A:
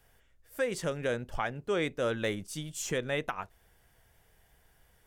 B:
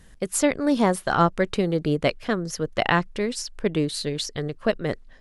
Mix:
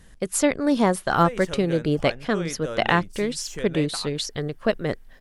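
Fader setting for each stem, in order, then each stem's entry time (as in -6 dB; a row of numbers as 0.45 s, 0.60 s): -2.5 dB, +0.5 dB; 0.65 s, 0.00 s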